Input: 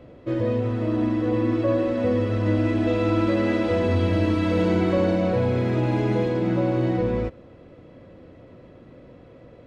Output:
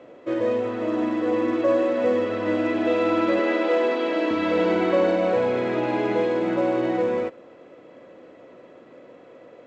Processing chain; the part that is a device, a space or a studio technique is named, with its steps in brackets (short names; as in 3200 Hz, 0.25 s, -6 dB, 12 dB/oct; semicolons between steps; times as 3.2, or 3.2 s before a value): 3.39–4.31 HPF 260 Hz 24 dB/oct; telephone (BPF 370–3600 Hz; gain +4 dB; µ-law 128 kbps 16000 Hz)